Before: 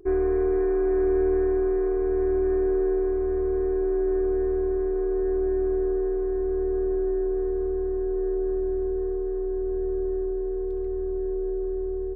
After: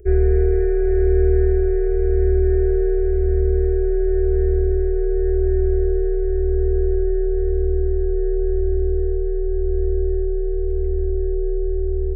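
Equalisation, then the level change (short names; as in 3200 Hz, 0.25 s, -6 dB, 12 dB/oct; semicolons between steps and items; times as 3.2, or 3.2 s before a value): bell 79 Hz +14.5 dB 2.2 oct; fixed phaser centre 360 Hz, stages 4; fixed phaser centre 1100 Hz, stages 6; +8.5 dB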